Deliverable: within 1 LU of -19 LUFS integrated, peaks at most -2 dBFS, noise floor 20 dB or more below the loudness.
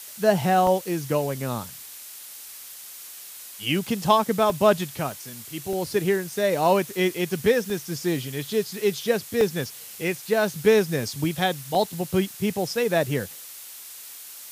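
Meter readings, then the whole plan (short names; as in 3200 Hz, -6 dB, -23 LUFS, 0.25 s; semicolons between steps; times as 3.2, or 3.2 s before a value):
dropouts 8; longest dropout 1.4 ms; noise floor -42 dBFS; noise floor target -44 dBFS; loudness -24.0 LUFS; peak -5.0 dBFS; loudness target -19.0 LUFS
-> interpolate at 0.67/4.5/5.12/5.73/6.31/7.7/9.41/11.75, 1.4 ms; noise print and reduce 6 dB; gain +5 dB; limiter -2 dBFS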